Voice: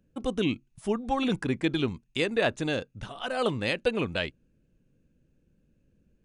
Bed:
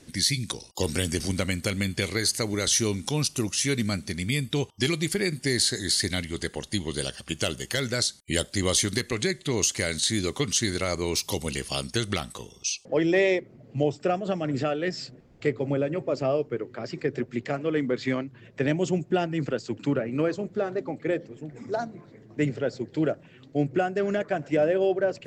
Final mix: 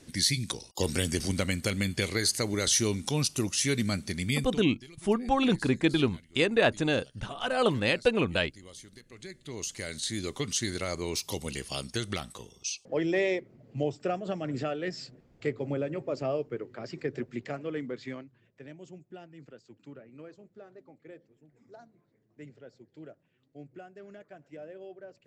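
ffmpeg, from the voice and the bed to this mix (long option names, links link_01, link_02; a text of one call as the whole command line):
ffmpeg -i stem1.wav -i stem2.wav -filter_complex "[0:a]adelay=4200,volume=2dB[link_01];[1:a]volume=17.5dB,afade=type=out:start_time=4.33:duration=0.3:silence=0.0707946,afade=type=in:start_time=9.06:duration=1.43:silence=0.105925,afade=type=out:start_time=17.25:duration=1.35:silence=0.149624[link_02];[link_01][link_02]amix=inputs=2:normalize=0" out.wav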